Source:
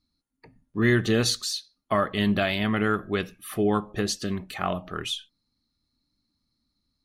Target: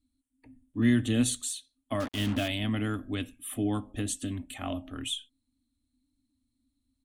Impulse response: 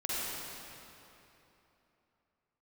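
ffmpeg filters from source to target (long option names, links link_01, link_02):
-filter_complex "[0:a]firequalizer=gain_entry='entry(110,0);entry(160,-26);entry(260,10);entry(380,-16);entry(570,-7);entry(1200,-14);entry(3300,-1);entry(4800,-20);entry(8000,7);entry(14000,-8)':delay=0.05:min_phase=1,asettb=1/sr,asplit=3[link_01][link_02][link_03];[link_01]atrim=end=2.004[link_04];[link_02]atrim=start=2:end=2.48,asetpts=PTS-STARTPTS,afade=type=in:duration=0.004:curve=qsin,afade=type=out:start_time=0.476:duration=0.004:curve=qsin,acrusher=bits=5:mix=0:aa=0.5[link_05];[link_03]atrim=start=2.476[link_06];[link_04][link_05]acrossfade=duration=0.004:curve1=hsin:curve2=qsin[link_07];[link_07][link_06]acrossfade=duration=0.004:curve1=qsin:curve2=hsin"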